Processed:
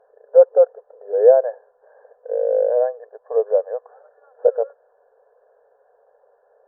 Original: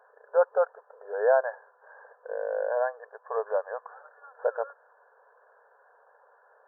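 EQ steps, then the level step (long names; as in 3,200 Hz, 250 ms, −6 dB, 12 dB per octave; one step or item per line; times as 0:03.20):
dynamic equaliser 490 Hz, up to +7 dB, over −39 dBFS, Q 4
spectral tilt −4.5 dB per octave
flat-topped bell 1,200 Hz −10.5 dB 1.1 octaves
+2.5 dB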